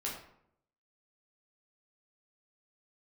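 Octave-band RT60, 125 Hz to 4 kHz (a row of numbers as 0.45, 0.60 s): 0.85, 0.80, 0.75, 0.70, 0.55, 0.45 s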